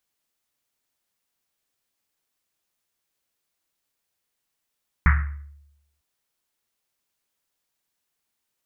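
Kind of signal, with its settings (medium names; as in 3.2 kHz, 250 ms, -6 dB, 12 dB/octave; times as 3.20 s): Risset drum length 0.95 s, pitch 72 Hz, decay 0.90 s, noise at 1.6 kHz, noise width 950 Hz, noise 25%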